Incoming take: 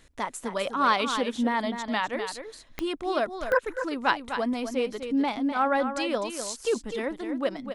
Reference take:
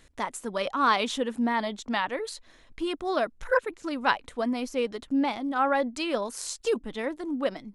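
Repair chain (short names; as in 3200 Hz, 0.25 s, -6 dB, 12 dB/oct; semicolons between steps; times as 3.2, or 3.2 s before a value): de-click; inverse comb 0.252 s -8.5 dB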